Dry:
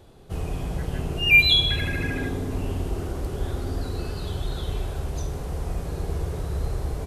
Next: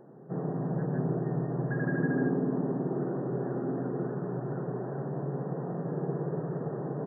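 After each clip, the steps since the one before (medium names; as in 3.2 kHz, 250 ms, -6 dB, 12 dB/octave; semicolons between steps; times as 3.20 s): tilt shelf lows +7 dB, about 1.1 kHz; FFT band-pass 120–1900 Hz; trim -3 dB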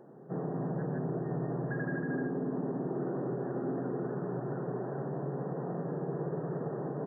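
bass shelf 120 Hz -7.5 dB; peak limiter -26 dBFS, peak gain reduction 8 dB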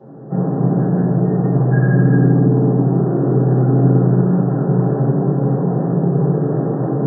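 reverberation RT60 1.1 s, pre-delay 3 ms, DRR -12 dB; trim -8.5 dB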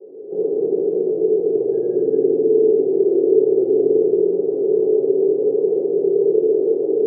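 Butterworth band-pass 420 Hz, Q 3.8; trim +8.5 dB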